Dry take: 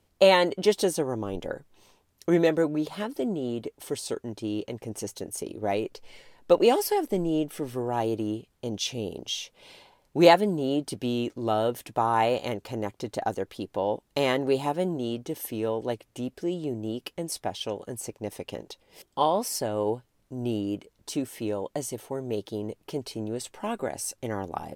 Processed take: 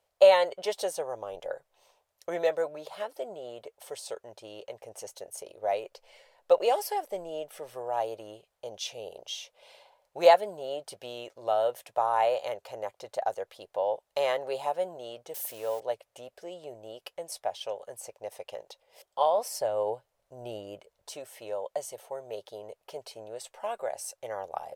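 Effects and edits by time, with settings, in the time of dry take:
15.34–15.80 s: zero-crossing glitches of -30 dBFS
19.38–21.13 s: bass shelf 380 Hz +6.5 dB
whole clip: resonant low shelf 400 Hz -13 dB, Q 3; trim -6 dB

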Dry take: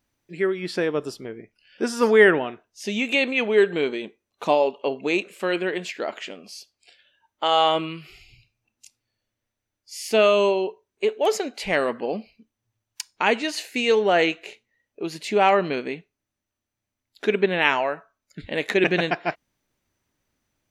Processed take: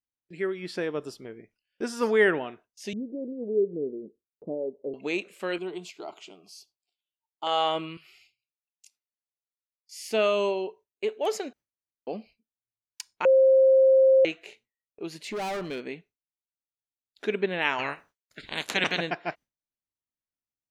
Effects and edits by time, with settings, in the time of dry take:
2.93–4.94 s: steep low-pass 510 Hz
5.58–7.47 s: static phaser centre 350 Hz, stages 8
7.97–9.97 s: high-pass 1.2 kHz 6 dB/octave
11.53–12.07 s: room tone
13.25–14.25 s: bleep 530 Hz -8 dBFS
15.11–15.82 s: overload inside the chain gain 23 dB
17.78–18.97 s: spectral peaks clipped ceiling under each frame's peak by 25 dB
whole clip: gate with hold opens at -41 dBFS; trim -6.5 dB

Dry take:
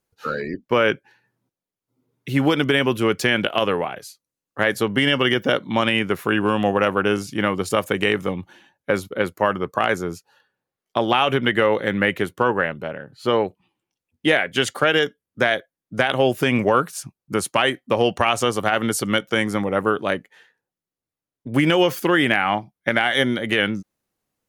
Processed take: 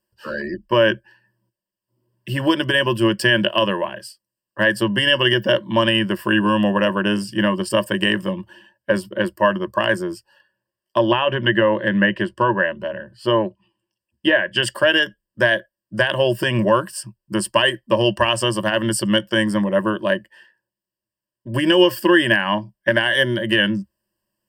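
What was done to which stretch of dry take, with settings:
10.98–14.63 s: low-pass that closes with the level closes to 2.5 kHz, closed at -14 dBFS
whole clip: rippled EQ curve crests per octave 1.3, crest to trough 17 dB; trim -2 dB

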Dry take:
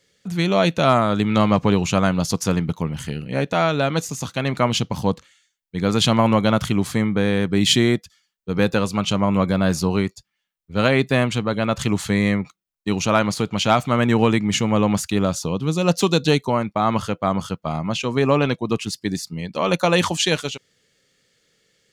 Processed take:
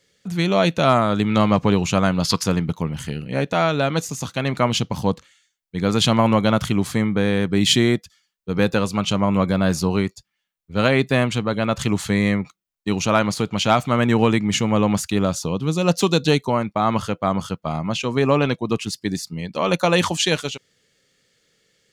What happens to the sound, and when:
2.23–2.43 s: time-frequency box 920–5300 Hz +9 dB

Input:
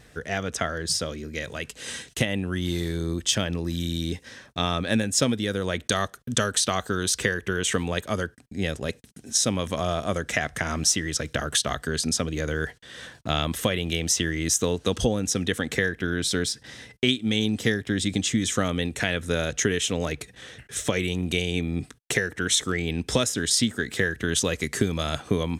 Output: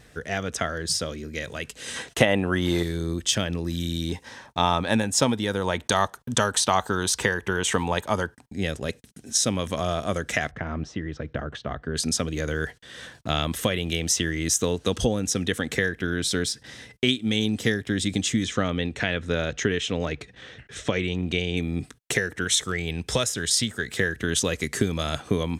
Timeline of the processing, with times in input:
1.96–2.83 s: peaking EQ 830 Hz +12.5 dB 2.4 oct
4.09–8.54 s: peaking EQ 900 Hz +14.5 dB 0.49 oct
10.51–11.96 s: tape spacing loss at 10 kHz 43 dB
18.45–21.57 s: low-pass 4.4 kHz
22.44–23.98 s: peaking EQ 270 Hz -7.5 dB

